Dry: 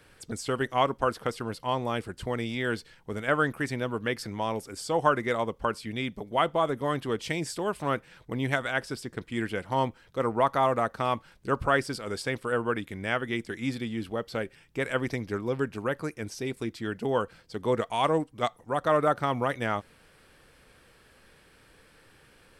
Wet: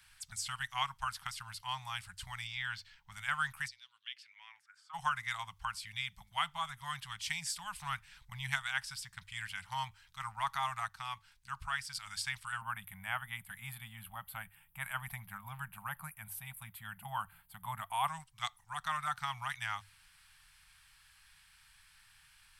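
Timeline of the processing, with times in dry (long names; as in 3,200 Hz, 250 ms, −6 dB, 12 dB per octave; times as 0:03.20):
0:02.47–0:03.12: parametric band 10,000 Hz −14 dB 0.92 octaves
0:03.67–0:04.93: resonant band-pass 5,100 Hz → 1,200 Hz, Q 5.2
0:07.63–0:08.59: low-shelf EQ 90 Hz +9.5 dB
0:10.88–0:11.95: clip gain −4 dB
0:12.61–0:18.08: drawn EQ curve 100 Hz 0 dB, 240 Hz +10 dB, 550 Hz +11 dB, 2,000 Hz −4 dB, 3,200 Hz −6 dB, 5,600 Hz −24 dB, 12,000 Hz +14 dB
whole clip: elliptic band-stop filter 180–830 Hz, stop band 50 dB; guitar amp tone stack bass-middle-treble 10-0-10; mains-hum notches 50/100 Hz; level +1 dB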